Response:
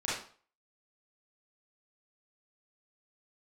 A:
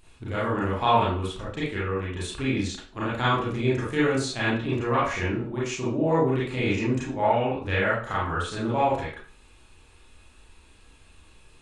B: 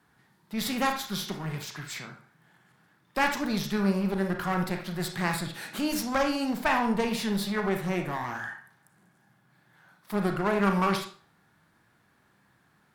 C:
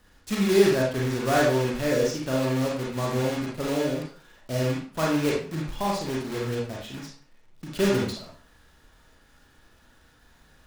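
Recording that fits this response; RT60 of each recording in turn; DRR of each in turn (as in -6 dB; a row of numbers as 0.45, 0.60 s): A; 0.45, 0.45, 0.45 s; -9.0, 4.0, -4.0 dB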